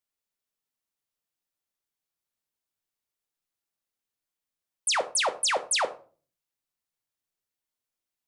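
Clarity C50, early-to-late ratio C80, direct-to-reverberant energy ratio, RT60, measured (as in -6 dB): 15.0 dB, 20.0 dB, 9.0 dB, 0.40 s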